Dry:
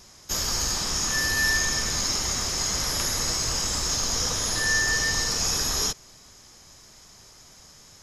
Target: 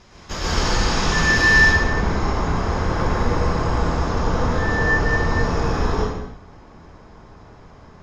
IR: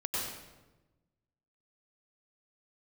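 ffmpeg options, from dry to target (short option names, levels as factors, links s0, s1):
-filter_complex "[0:a]asetnsamples=n=441:p=0,asendcmd='1.58 lowpass f 1300',lowpass=2900[s0];[1:a]atrim=start_sample=2205,afade=t=out:st=0.44:d=0.01,atrim=end_sample=19845,asetrate=37926,aresample=44100[s1];[s0][s1]afir=irnorm=-1:irlink=0,volume=2"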